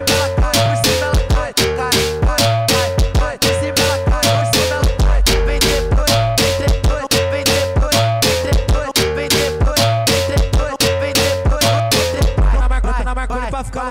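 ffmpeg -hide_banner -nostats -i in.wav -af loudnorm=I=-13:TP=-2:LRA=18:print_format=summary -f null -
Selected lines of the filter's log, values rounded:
Input Integrated:    -15.4 LUFS
Input True Peak:      -4.7 dBTP
Input LRA:             1.8 LU
Input Threshold:     -25.4 LUFS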